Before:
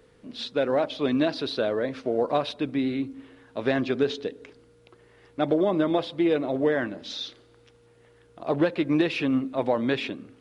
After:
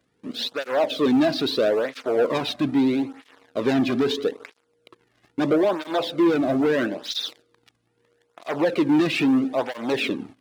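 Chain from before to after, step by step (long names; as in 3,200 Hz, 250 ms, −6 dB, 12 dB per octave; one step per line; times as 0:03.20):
leveller curve on the samples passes 3
through-zero flanger with one copy inverted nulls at 0.77 Hz, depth 2.3 ms
level −1.5 dB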